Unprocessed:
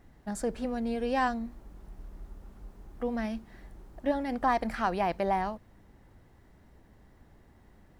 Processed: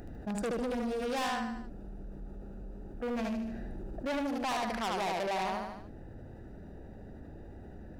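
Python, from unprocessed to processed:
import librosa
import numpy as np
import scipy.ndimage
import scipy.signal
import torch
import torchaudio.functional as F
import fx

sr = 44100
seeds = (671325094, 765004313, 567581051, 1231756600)

p1 = fx.wiener(x, sr, points=41)
p2 = fx.low_shelf(p1, sr, hz=320.0, db=-9.5)
p3 = fx.rider(p2, sr, range_db=4, speed_s=0.5)
p4 = p3 + fx.echo_feedback(p3, sr, ms=75, feedback_pct=37, wet_db=-3.5, dry=0)
p5 = 10.0 ** (-34.5 / 20.0) * np.tanh(p4 / 10.0 ** (-34.5 / 20.0))
p6 = fx.high_shelf(p5, sr, hz=3000.0, db=8.0)
p7 = fx.env_flatten(p6, sr, amount_pct=50)
y = p7 * 10.0 ** (3.5 / 20.0)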